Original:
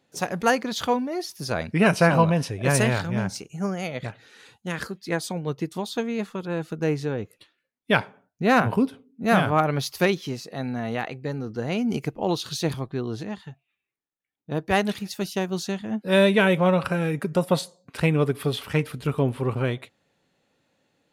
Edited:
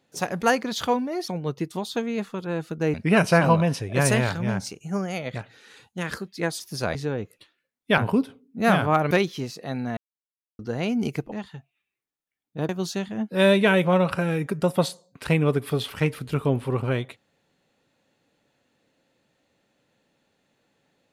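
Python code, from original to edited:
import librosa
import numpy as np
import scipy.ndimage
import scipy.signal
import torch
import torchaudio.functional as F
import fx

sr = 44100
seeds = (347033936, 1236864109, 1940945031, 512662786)

y = fx.edit(x, sr, fx.swap(start_s=1.28, length_s=0.35, other_s=5.29, other_length_s=1.66),
    fx.cut(start_s=7.98, length_s=0.64),
    fx.cut(start_s=9.75, length_s=0.25),
    fx.silence(start_s=10.86, length_s=0.62),
    fx.cut(start_s=12.21, length_s=1.04),
    fx.cut(start_s=14.62, length_s=0.8), tone=tone)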